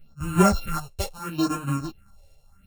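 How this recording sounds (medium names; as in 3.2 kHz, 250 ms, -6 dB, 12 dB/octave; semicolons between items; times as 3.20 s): a buzz of ramps at a fixed pitch in blocks of 32 samples; phasing stages 4, 0.76 Hz, lowest notch 210–4900 Hz; tremolo saw up 1.7 Hz, depth 40%; a shimmering, thickened sound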